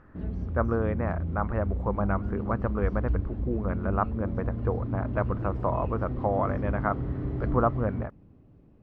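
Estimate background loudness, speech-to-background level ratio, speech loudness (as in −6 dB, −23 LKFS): −33.0 LKFS, 2.0 dB, −31.0 LKFS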